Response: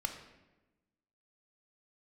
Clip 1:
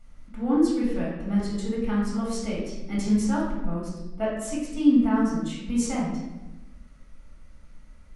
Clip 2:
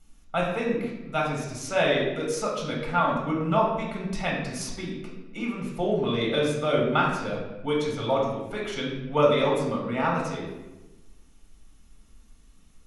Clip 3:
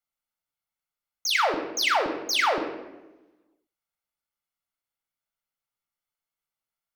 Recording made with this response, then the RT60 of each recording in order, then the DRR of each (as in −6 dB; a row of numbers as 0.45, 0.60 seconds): 3; 1.1, 1.1, 1.1 seconds; −6.5, −2.5, 4.5 decibels